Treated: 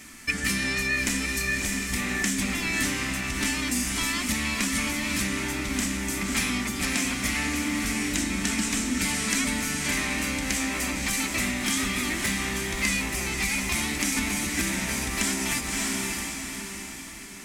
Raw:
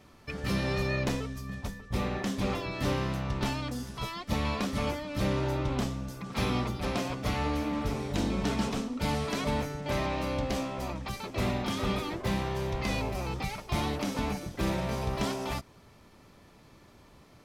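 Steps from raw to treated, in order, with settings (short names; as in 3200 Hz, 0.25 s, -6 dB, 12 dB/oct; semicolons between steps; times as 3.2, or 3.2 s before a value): high shelf 4400 Hz +11.5 dB; diffused feedback echo 0.588 s, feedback 43%, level -6 dB; compressor, threshold -32 dBFS, peak gain reduction 9 dB; graphic EQ 125/250/500/1000/2000/4000/8000 Hz -10/+9/-11/-4/+12/-4/+12 dB; gain +6 dB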